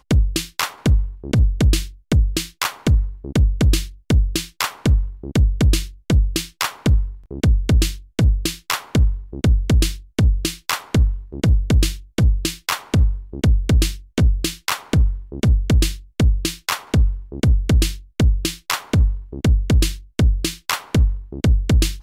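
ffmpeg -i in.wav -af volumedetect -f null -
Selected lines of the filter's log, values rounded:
mean_volume: -17.6 dB
max_volume: -5.1 dB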